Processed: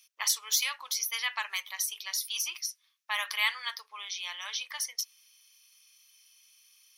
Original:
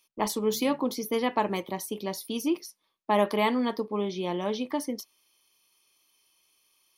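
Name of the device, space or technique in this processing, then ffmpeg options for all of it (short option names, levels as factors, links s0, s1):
headphones lying on a table: -af "highpass=f=1500:w=0.5412,highpass=f=1500:w=1.3066,equalizer=f=5800:t=o:w=0.25:g=7,volume=1.88"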